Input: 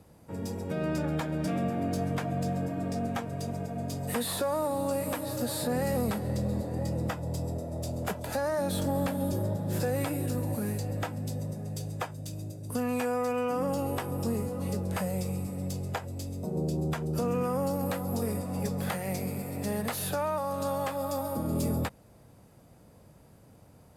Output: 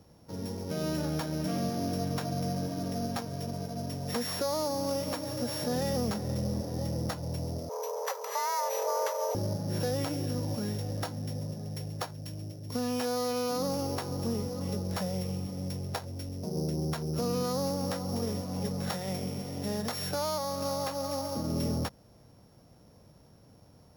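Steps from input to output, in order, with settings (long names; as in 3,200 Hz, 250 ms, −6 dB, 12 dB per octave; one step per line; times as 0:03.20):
samples sorted by size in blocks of 8 samples
0:07.69–0:09.35: frequency shifter +350 Hz
level −1.5 dB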